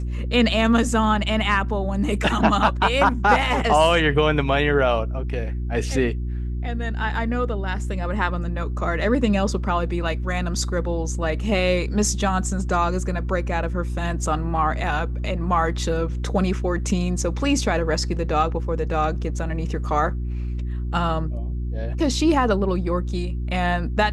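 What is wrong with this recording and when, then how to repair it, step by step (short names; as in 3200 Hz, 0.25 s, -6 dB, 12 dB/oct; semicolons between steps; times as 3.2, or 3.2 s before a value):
hum 60 Hz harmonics 6 -26 dBFS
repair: de-hum 60 Hz, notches 6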